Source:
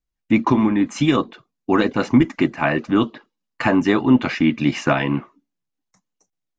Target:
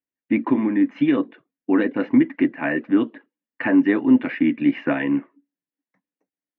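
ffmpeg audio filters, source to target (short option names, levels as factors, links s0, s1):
-af "highpass=190,equalizer=f=280:t=q:w=4:g=10,equalizer=f=510:t=q:w=4:g=4,equalizer=f=790:t=q:w=4:g=-3,equalizer=f=1200:t=q:w=4:g=-7,equalizer=f=1800:t=q:w=4:g=7,lowpass=f=2700:w=0.5412,lowpass=f=2700:w=1.3066,volume=0.501"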